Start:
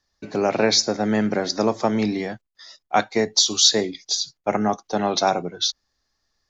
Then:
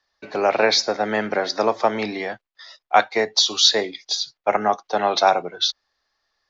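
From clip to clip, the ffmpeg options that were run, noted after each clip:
-filter_complex "[0:a]acrossover=split=450 4800:gain=0.178 1 0.0794[s0][s1][s2];[s0][s1][s2]amix=inputs=3:normalize=0,volume=1.78"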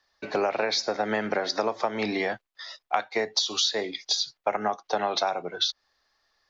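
-af "acompressor=threshold=0.0631:ratio=12,volume=1.26"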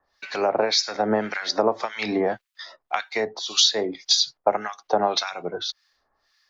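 -filter_complex "[0:a]acrossover=split=1300[s0][s1];[s0]aeval=exprs='val(0)*(1-1/2+1/2*cos(2*PI*1.8*n/s))':c=same[s2];[s1]aeval=exprs='val(0)*(1-1/2-1/2*cos(2*PI*1.8*n/s))':c=same[s3];[s2][s3]amix=inputs=2:normalize=0,volume=2.37"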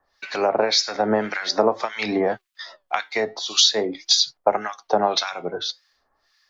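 -af "flanger=delay=1.2:depth=6.6:regen=86:speed=0.46:shape=triangular,volume=2.11"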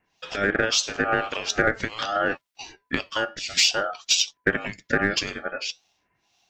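-filter_complex "[0:a]aeval=exprs='val(0)*sin(2*PI*1000*n/s)':c=same,asplit=2[s0][s1];[s1]asoftclip=type=hard:threshold=0.2,volume=0.282[s2];[s0][s2]amix=inputs=2:normalize=0,volume=0.794"

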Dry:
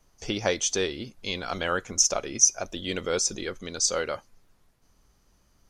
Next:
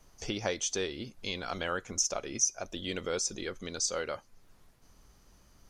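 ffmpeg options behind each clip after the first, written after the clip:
-af "acompressor=threshold=0.00282:ratio=1.5,volume=1.5"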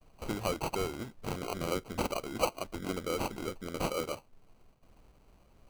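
-af "bandreject=f=6400:w=13,agate=range=0.0224:threshold=0.00112:ratio=3:detection=peak,acrusher=samples=25:mix=1:aa=0.000001"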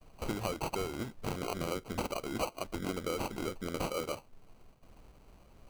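-af "acompressor=threshold=0.0178:ratio=6,volume=1.5"

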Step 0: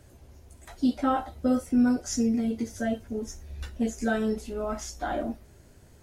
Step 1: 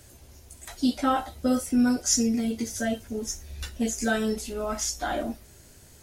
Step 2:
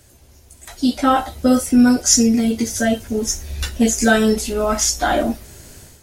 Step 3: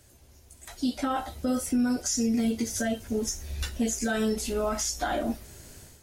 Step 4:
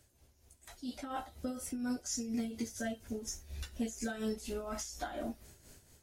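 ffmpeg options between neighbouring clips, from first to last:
-af "highshelf=f=2400:g=12"
-af "dynaudnorm=f=580:g=3:m=3.76,volume=1.12"
-af "alimiter=limit=0.251:level=0:latency=1:release=143,volume=0.447"
-af "tremolo=f=4.2:d=0.64,volume=0.398"

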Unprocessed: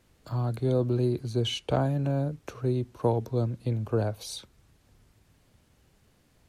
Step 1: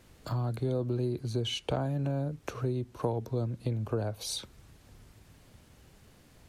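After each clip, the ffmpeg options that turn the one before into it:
-af "acompressor=threshold=0.0112:ratio=2.5,volume=2"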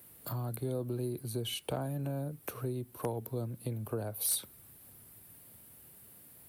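-filter_complex "[0:a]highpass=95,aexciter=amount=13.1:drive=5.1:freq=9300,asplit=2[s0][s1];[s1]aeval=exprs='(mod(7.08*val(0)+1,2)-1)/7.08':c=same,volume=0.447[s2];[s0][s2]amix=inputs=2:normalize=0,volume=0.422"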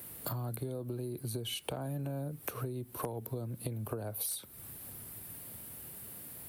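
-af "acompressor=threshold=0.00708:ratio=10,volume=2.66"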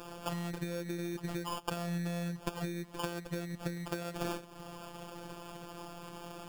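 -af "equalizer=f=110:t=o:w=0.77:g=3,acrusher=samples=22:mix=1:aa=0.000001,afftfilt=real='hypot(re,im)*cos(PI*b)':imag='0':win_size=1024:overlap=0.75,volume=1.58"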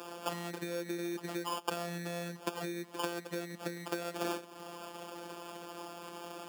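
-af "highpass=f=220:w=0.5412,highpass=f=220:w=1.3066,volume=1.26"

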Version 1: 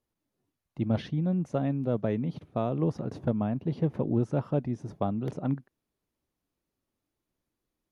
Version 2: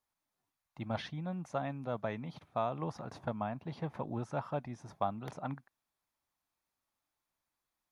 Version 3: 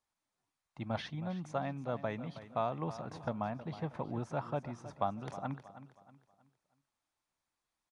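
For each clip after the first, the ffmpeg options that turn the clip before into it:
-af "lowshelf=f=590:t=q:w=1.5:g=-11,bandreject=f=2900:w=15"
-af "aecho=1:1:318|636|954|1272:0.2|0.0738|0.0273|0.0101,aresample=22050,aresample=44100"

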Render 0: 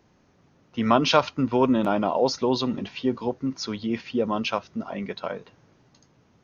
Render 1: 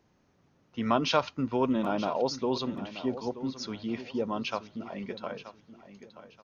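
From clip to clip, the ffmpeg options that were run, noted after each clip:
-af "aecho=1:1:928|1856|2784:0.211|0.0592|0.0166,volume=0.473"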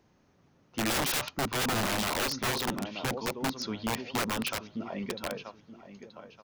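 -af "aeval=exprs='(mod(20*val(0)+1,2)-1)/20':c=same,volume=1.26"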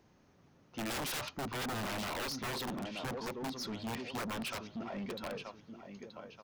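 -af "asoftclip=type=tanh:threshold=0.0158"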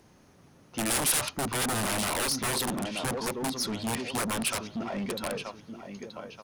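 -af "equalizer=f=9800:t=o:w=0.67:g=14.5,volume=2.37"

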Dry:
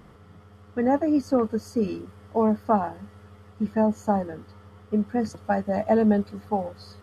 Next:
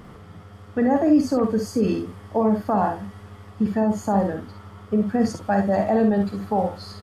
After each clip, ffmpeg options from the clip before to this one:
-filter_complex "[0:a]alimiter=limit=0.106:level=0:latency=1:release=14,asplit=2[s0][s1];[s1]aecho=0:1:50|66:0.398|0.355[s2];[s0][s2]amix=inputs=2:normalize=0,volume=2.11"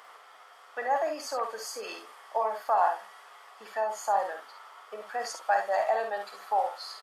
-af "highpass=f=690:w=0.5412,highpass=f=690:w=1.3066"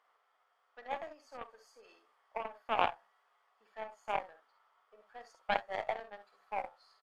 -af "lowpass=f=3300:p=1,aeval=exprs='0.224*(cos(1*acos(clip(val(0)/0.224,-1,1)))-cos(1*PI/2))+0.0708*(cos(3*acos(clip(val(0)/0.224,-1,1)))-cos(3*PI/2))+0.00355*(cos(4*acos(clip(val(0)/0.224,-1,1)))-cos(4*PI/2))+0.00158*(cos(5*acos(clip(val(0)/0.224,-1,1)))-cos(5*PI/2))':c=same"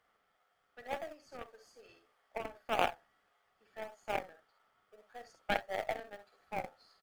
-filter_complex "[0:a]equalizer=f=1000:t=o:w=0.39:g=-11,asplit=2[s0][s1];[s1]acrusher=samples=32:mix=1:aa=0.000001:lfo=1:lforange=32:lforate=1.7,volume=0.282[s2];[s0][s2]amix=inputs=2:normalize=0,volume=1.12"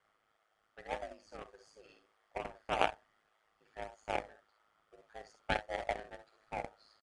-af "aeval=exprs='val(0)*sin(2*PI*53*n/s)':c=same,aresample=22050,aresample=44100,volume=1.33"

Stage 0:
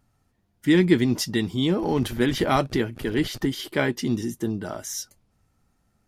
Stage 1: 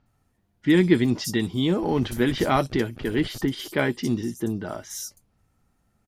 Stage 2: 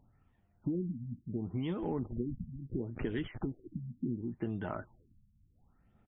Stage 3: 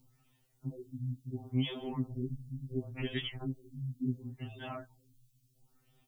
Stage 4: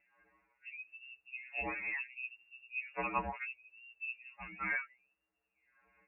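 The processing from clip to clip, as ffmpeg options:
-filter_complex "[0:a]acrossover=split=5200[s0][s1];[s1]adelay=60[s2];[s0][s2]amix=inputs=2:normalize=0"
-af "aphaser=in_gain=1:out_gain=1:delay=1.6:decay=0.35:speed=1:type=triangular,acompressor=threshold=0.0355:ratio=12,afftfilt=real='re*lt(b*sr/1024,240*pow(3800/240,0.5+0.5*sin(2*PI*0.71*pts/sr)))':imag='im*lt(b*sr/1024,240*pow(3800/240,0.5+0.5*sin(2*PI*0.71*pts/sr)))':win_size=1024:overlap=0.75,volume=0.75"
-af "aexciter=amount=5.6:drive=6.4:freq=2500,afftfilt=real='re*2.45*eq(mod(b,6),0)':imag='im*2.45*eq(mod(b,6),0)':win_size=2048:overlap=0.75,volume=1.12"
-filter_complex "[0:a]highpass=740,asplit=2[s0][s1];[s1]asoftclip=type=tanh:threshold=0.0158,volume=0.398[s2];[s0][s2]amix=inputs=2:normalize=0,lowpass=f=2500:t=q:w=0.5098,lowpass=f=2500:t=q:w=0.6013,lowpass=f=2500:t=q:w=0.9,lowpass=f=2500:t=q:w=2.563,afreqshift=-2900,volume=2.51"

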